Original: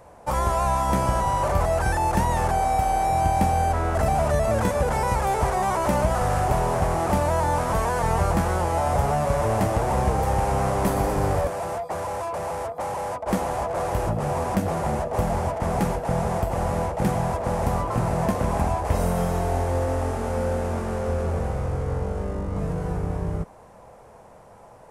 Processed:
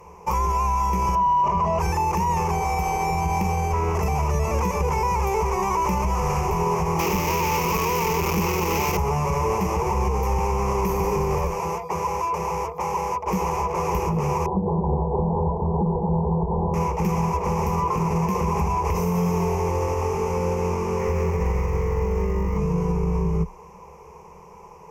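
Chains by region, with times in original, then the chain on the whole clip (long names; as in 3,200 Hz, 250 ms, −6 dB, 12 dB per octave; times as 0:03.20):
0:01.15–0:01.79: low-pass filter 5,300 Hz + hollow resonant body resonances 220/650/990/2,900 Hz, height 14 dB
0:06.99–0:08.97: sign of each sample alone + parametric band 300 Hz +7 dB 1.5 octaves
0:14.46–0:16.74: Butterworth low-pass 920 Hz 48 dB per octave + single-tap delay 214 ms −7 dB
0:20.99–0:22.58: parametric band 1,900 Hz +10 dB 0.38 octaves + log-companded quantiser 8 bits
whole clip: EQ curve with evenly spaced ripples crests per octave 0.78, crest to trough 18 dB; brickwall limiter −14.5 dBFS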